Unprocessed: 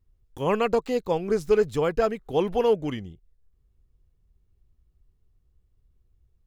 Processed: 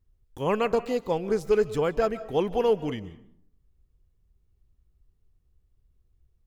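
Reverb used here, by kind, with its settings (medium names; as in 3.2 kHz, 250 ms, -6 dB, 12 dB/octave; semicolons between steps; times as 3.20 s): algorithmic reverb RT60 0.67 s, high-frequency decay 0.5×, pre-delay 105 ms, DRR 16 dB; trim -1.5 dB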